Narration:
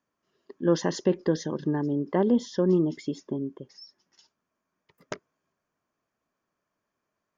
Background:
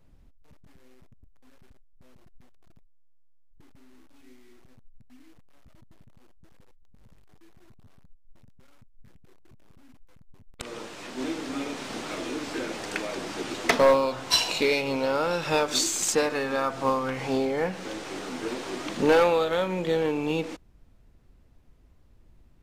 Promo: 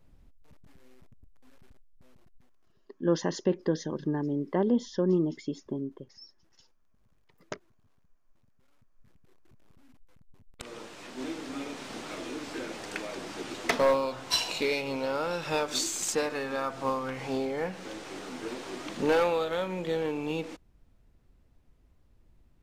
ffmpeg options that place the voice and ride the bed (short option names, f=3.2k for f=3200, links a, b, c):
-filter_complex "[0:a]adelay=2400,volume=-3dB[a];[1:a]volume=7dB,afade=t=out:st=1.82:d=0.91:silence=0.251189,afade=t=in:st=8.53:d=1.09:silence=0.375837[b];[a][b]amix=inputs=2:normalize=0"